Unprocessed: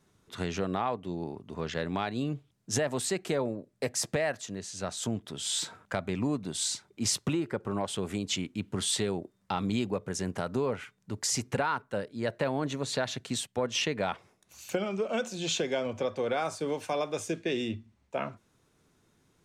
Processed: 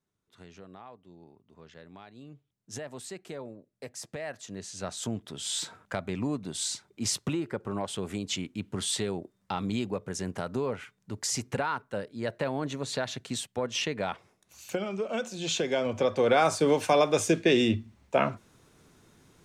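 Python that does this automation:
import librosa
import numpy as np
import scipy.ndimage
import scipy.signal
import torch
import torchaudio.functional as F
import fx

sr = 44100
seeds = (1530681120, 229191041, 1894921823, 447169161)

y = fx.gain(x, sr, db=fx.line((2.14, -17.5), (2.74, -10.5), (4.1, -10.5), (4.6, -1.0), (15.35, -1.0), (16.44, 8.5)))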